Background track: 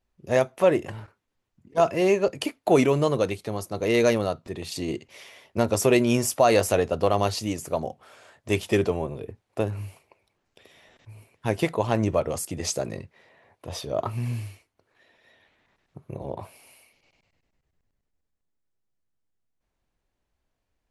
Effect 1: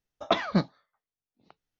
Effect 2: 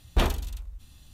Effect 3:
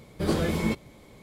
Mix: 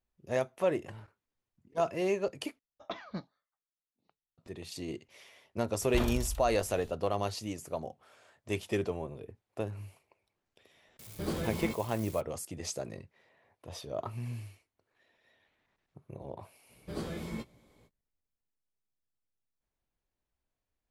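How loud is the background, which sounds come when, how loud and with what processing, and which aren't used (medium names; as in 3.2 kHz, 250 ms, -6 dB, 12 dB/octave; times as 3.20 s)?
background track -9.5 dB
2.59 s: replace with 1 -15.5 dB
5.78 s: add 2 -1.5 dB + peak limiter -21 dBFS
10.99 s: add 3 -9 dB + zero-crossing glitches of -30 dBFS
16.68 s: add 3 -13 dB, fades 0.05 s + doubling 17 ms -7.5 dB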